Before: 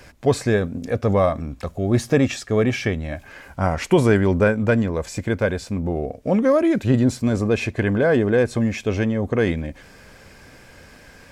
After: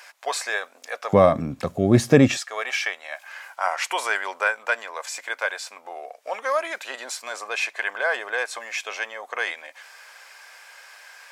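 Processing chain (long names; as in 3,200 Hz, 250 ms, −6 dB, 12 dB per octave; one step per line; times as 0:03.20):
high-pass filter 770 Hz 24 dB per octave, from 0:01.13 110 Hz, from 0:02.37 790 Hz
level +3 dB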